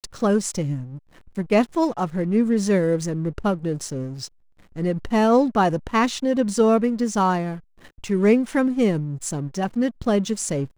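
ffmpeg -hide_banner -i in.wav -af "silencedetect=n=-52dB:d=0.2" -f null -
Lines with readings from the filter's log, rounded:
silence_start: 4.28
silence_end: 4.59 | silence_duration: 0.30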